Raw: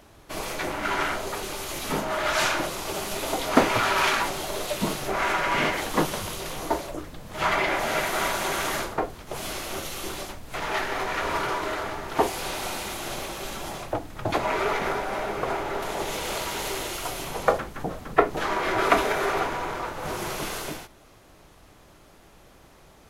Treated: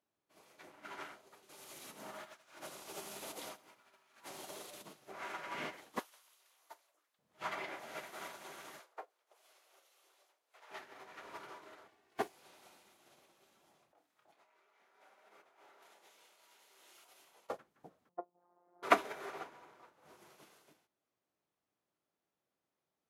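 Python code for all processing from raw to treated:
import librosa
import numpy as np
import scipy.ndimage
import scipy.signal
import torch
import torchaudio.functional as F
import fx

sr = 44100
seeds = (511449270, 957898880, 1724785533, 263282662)

y = fx.chain(x, sr, fx.peak_eq(hz=9900.0, db=4.5, octaves=1.5),
    fx.over_compress(threshold_db=-28.0, ratio=-0.5),
    fx.echo_crushed(ms=83, feedback_pct=55, bits=8, wet_db=-7), at=(1.49, 4.86))
y = fx.chain(y, sr, fx.highpass(hz=980.0, slope=12),
    fx.high_shelf(hz=8500.0, db=5.5), at=(5.99, 7.19))
y = fx.chain(y, sr, fx.highpass(hz=460.0, slope=24),
    fx.echo_single(ms=315, db=-21.5), at=(8.79, 10.71))
y = fx.chain(y, sr, fx.lower_of_two(delay_ms=2.7),
    fx.notch(hz=1300.0, q=7.6), at=(11.88, 12.3))
y = fx.chain(y, sr, fx.highpass(hz=880.0, slope=6),
    fx.over_compress(threshold_db=-35.0, ratio=-1.0),
    fx.doubler(ms=29.0, db=-7), at=(13.92, 17.5))
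y = fx.chain(y, sr, fx.ladder_lowpass(hz=970.0, resonance_pct=45),
    fx.robotise(hz=176.0), at=(18.09, 18.83))
y = scipy.signal.sosfilt(scipy.signal.butter(2, 160.0, 'highpass', fs=sr, output='sos'), y)
y = fx.upward_expand(y, sr, threshold_db=-35.0, expansion=2.5)
y = y * 10.0 ** (-5.5 / 20.0)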